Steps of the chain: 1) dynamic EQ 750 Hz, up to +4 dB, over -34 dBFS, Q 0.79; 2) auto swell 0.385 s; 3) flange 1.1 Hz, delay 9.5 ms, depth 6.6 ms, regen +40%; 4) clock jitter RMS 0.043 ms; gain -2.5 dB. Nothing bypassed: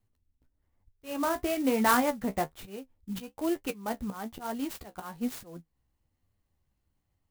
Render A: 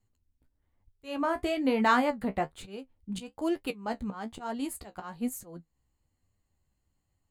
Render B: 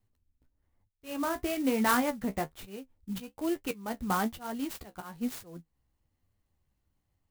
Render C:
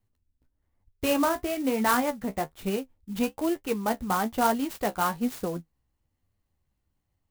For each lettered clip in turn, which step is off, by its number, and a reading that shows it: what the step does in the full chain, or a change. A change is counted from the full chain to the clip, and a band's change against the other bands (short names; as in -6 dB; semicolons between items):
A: 4, 8 kHz band -5.0 dB; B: 1, 125 Hz band +2.0 dB; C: 2, crest factor change -4.0 dB